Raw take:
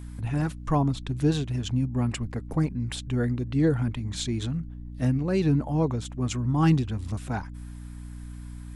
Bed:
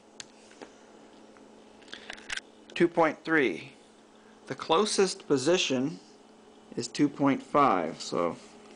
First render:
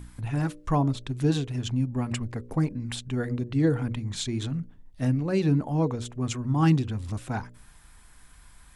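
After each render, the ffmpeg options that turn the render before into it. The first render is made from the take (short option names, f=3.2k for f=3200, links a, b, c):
-af "bandreject=f=60:t=h:w=4,bandreject=f=120:t=h:w=4,bandreject=f=180:t=h:w=4,bandreject=f=240:t=h:w=4,bandreject=f=300:t=h:w=4,bandreject=f=360:t=h:w=4,bandreject=f=420:t=h:w=4,bandreject=f=480:t=h:w=4,bandreject=f=540:t=h:w=4,bandreject=f=600:t=h:w=4"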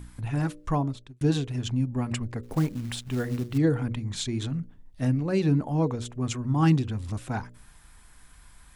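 -filter_complex "[0:a]asettb=1/sr,asplit=3[a][b][c];[a]atrim=end=2.434[d];[b]atrim=start=2.43:end=3.58,asetpts=PTS-STARTPTS,afade=t=in:d=0.004:c=qsin,afade=t=out:st=1.146:d=0.004:c=qsin,acrusher=bits=5:mode=log:mix=0:aa=0.000001[e];[c]atrim=start=3.576[f];[d][e]acrossfade=d=0.004:c1=hsin:c2=qsin[g];[g][f]acrossfade=d=0.004:c1=qsin:c2=hsin,asplit=2[h][i];[h]atrim=end=1.21,asetpts=PTS-STARTPTS,afade=t=out:st=0.64:d=0.57[j];[i]atrim=start=1.21,asetpts=PTS-STARTPTS,afade=t=in:d=0.004:c=hsin[k];[j][k]concat=n=2:v=0:a=1"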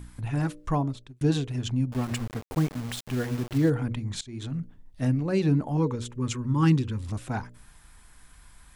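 -filter_complex "[0:a]asettb=1/sr,asplit=3[a][b][c];[a]atrim=end=1.924[d];[b]atrim=start=1.92:end=3.7,asetpts=PTS-STARTPTS,afade=t=in:d=0.004:c=qsin,afade=t=out:st=1.776:d=0.004:c=qsin,aeval=exprs='val(0)*gte(abs(val(0)),0.0168)':c=same[e];[c]atrim=start=3.696[f];[d][e]acrossfade=d=0.004:c1=hsin:c2=qsin[g];[g][f]acrossfade=d=0.004:c1=qsin:c2=hsin,asettb=1/sr,asplit=3[h][i][j];[h]atrim=end=5.774[k];[i]atrim=start=5.77:end=7.03,asetpts=PTS-STARTPTS,afade=t=in:d=0.004:c=qsin,afade=t=out:st=1.256:d=0.004:c=qsin,asuperstop=centerf=700:order=8:qfactor=2.9[l];[j]atrim=start=7.026[m];[k][l]acrossfade=d=0.004:c1=hsin:c2=qsin[n];[n][m]acrossfade=d=0.004:c1=qsin:c2=hsin,asplit=2[o][p];[o]atrim=end=4.21,asetpts=PTS-STARTPTS,afade=t=out:st=4.206:d=0.004:c=hsin:silence=0.0794328[q];[p]atrim=start=4.21,asetpts=PTS-STARTPTS,afade=t=in:d=0.4:silence=0.0794328[r];[q][r]concat=n=2:v=0:a=1"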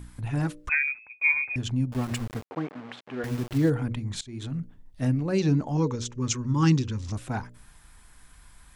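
-filter_complex "[0:a]asettb=1/sr,asplit=3[a][b][c];[a]atrim=end=0.694[d];[b]atrim=start=0.69:end=1.56,asetpts=PTS-STARTPTS,afade=t=in:d=0.004:c=qsin,afade=t=out:st=0.866:d=0.004:c=qsin,lowpass=f=2.2k:t=q:w=0.5098,lowpass=f=2.2k:t=q:w=0.6013,lowpass=f=2.2k:t=q:w=0.9,lowpass=f=2.2k:t=q:w=2.563,afreqshift=-2600[e];[c]atrim=start=1.556[f];[d][e]acrossfade=d=0.004:c1=hsin:c2=qsin[g];[g][f]acrossfade=d=0.004:c1=qsin:c2=hsin,asettb=1/sr,asplit=3[h][i][j];[h]atrim=end=2.444[k];[i]atrim=start=2.44:end=3.24,asetpts=PTS-STARTPTS,afade=t=in:d=0.004:c=qsin,afade=t=out:st=0.796:d=0.004:c=qsin,highpass=310,lowpass=2.2k[l];[j]atrim=start=3.236[m];[k][l]acrossfade=d=0.004:c1=hsin:c2=qsin[n];[n][m]acrossfade=d=0.004:c1=qsin:c2=hsin,asettb=1/sr,asplit=3[o][p][q];[o]atrim=end=5.384[r];[p]atrim=start=5.38:end=7.15,asetpts=PTS-STARTPTS,afade=t=in:d=0.004:c=qsin,afade=t=out:st=1.766:d=0.004:c=qsin,lowpass=f=6.1k:t=q:w=3.6[s];[q]atrim=start=7.146[t];[r][s]acrossfade=d=0.004:c1=hsin:c2=qsin[u];[u][t]acrossfade=d=0.004:c1=qsin:c2=hsin"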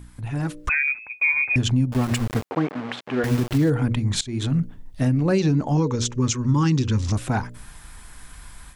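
-af "alimiter=limit=-22.5dB:level=0:latency=1:release=232,dynaudnorm=f=300:g=3:m=10.5dB"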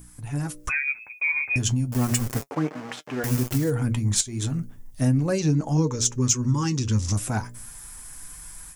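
-af "flanger=delay=6.1:depth=3.9:regen=50:speed=0.35:shape=triangular,aexciter=amount=2.8:drive=7.9:freq=5.3k"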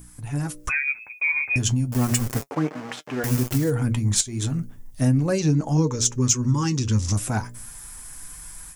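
-af "volume=1.5dB"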